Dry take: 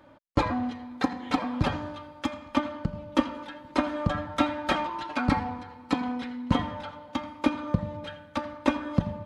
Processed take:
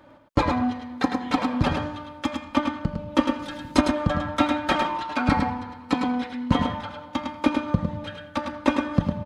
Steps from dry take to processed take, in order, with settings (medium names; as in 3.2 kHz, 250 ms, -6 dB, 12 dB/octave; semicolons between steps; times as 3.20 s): 3.39–3.81 s: tone controls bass +11 dB, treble +12 dB; delay 105 ms -5.5 dB; trim +3 dB